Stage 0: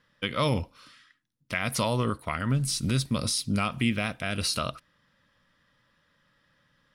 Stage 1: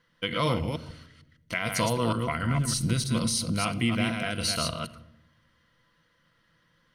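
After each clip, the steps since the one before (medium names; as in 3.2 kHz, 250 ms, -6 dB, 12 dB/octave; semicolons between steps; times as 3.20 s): chunks repeated in reverse 152 ms, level -4 dB; rippled EQ curve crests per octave 1.9, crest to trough 7 dB; simulated room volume 3700 m³, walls furnished, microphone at 0.74 m; trim -1.5 dB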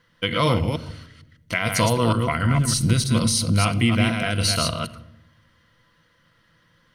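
peaking EQ 100 Hz +8.5 dB 0.21 oct; trim +6 dB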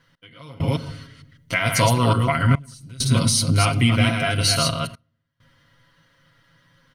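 comb 7.3 ms, depth 78%; trance gate "x...xxxxxxxxxxxx" 100 bpm -24 dB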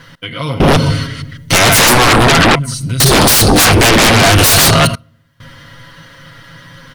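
sine folder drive 18 dB, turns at -4.5 dBFS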